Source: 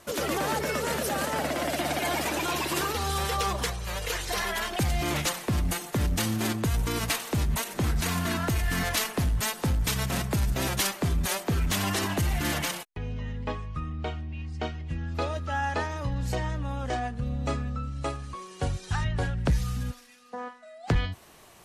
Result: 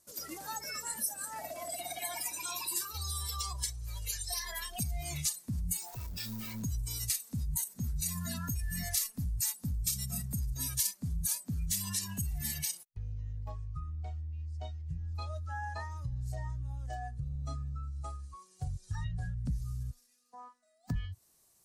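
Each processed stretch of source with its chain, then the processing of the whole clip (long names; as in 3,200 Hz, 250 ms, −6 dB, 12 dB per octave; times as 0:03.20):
0:05.77–0:06.63: downward compressor 12 to 1, threshold −31 dBFS + mid-hump overdrive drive 25 dB, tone 2,700 Hz, clips at −19.5 dBFS + highs frequency-modulated by the lows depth 0.8 ms
whole clip: noise reduction from a noise print of the clip's start 18 dB; drawn EQ curve 140 Hz 0 dB, 750 Hz −5 dB, 3,100 Hz −5 dB, 4,600 Hz +7 dB, 8,400 Hz +13 dB; downward compressor 2 to 1, threshold −34 dBFS; level −2.5 dB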